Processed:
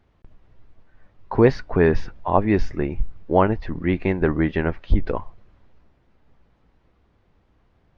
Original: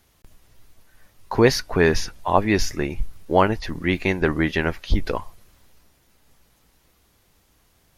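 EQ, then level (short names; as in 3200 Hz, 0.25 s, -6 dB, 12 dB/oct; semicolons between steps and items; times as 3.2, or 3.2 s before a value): tape spacing loss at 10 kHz 40 dB; +2.5 dB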